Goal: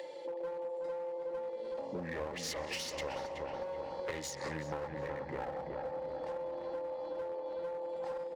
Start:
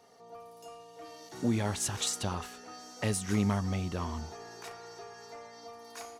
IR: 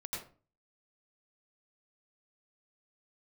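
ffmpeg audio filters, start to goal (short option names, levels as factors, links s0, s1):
-filter_complex "[0:a]afwtdn=0.00562,acompressor=mode=upward:threshold=0.01:ratio=2.5,asplit=2[s0][s1];[1:a]atrim=start_sample=2205,asetrate=83790,aresample=44100,adelay=95[s2];[s1][s2]afir=irnorm=-1:irlink=0,volume=0.178[s3];[s0][s3]amix=inputs=2:normalize=0,crystalizer=i=5.5:c=0,asplit=3[s4][s5][s6];[s4]bandpass=f=730:t=q:w=8,volume=1[s7];[s5]bandpass=f=1090:t=q:w=8,volume=0.501[s8];[s6]bandpass=f=2440:t=q:w=8,volume=0.355[s9];[s7][s8][s9]amix=inputs=3:normalize=0,asetrate=32667,aresample=44100,acrossover=split=100[s10][s11];[s11]aeval=exprs='clip(val(0),-1,0.00398)':c=same[s12];[s10][s12]amix=inputs=2:normalize=0,highpass=46,asplit=2[s13][s14];[s14]adelay=373,lowpass=f=1900:p=1,volume=0.531,asplit=2[s15][s16];[s16]adelay=373,lowpass=f=1900:p=1,volume=0.53,asplit=2[s17][s18];[s18]adelay=373,lowpass=f=1900:p=1,volume=0.53,asplit=2[s19][s20];[s20]adelay=373,lowpass=f=1900:p=1,volume=0.53,asplit=2[s21][s22];[s22]adelay=373,lowpass=f=1900:p=1,volume=0.53,asplit=2[s23][s24];[s24]adelay=373,lowpass=f=1900:p=1,volume=0.53,asplit=2[s25][s26];[s26]adelay=373,lowpass=f=1900:p=1,volume=0.53[s27];[s13][s15][s17][s19][s21][s23][s25][s27]amix=inputs=8:normalize=0,acompressor=threshold=0.00224:ratio=4,volume=5.96"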